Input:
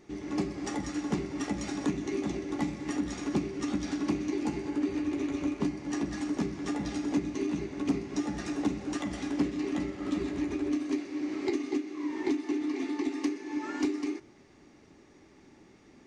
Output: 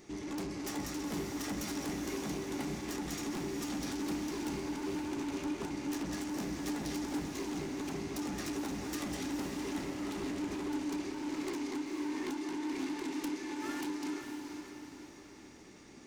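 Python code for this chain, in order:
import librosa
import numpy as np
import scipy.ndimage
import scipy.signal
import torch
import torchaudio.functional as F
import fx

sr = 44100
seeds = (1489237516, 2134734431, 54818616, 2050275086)

y = fx.self_delay(x, sr, depth_ms=0.2)
y = fx.high_shelf(y, sr, hz=4600.0, db=11.5)
y = 10.0 ** (-35.5 / 20.0) * np.tanh(y / 10.0 ** (-35.5 / 20.0))
y = fx.echo_diffused(y, sr, ms=491, feedback_pct=45, wet_db=-5.5)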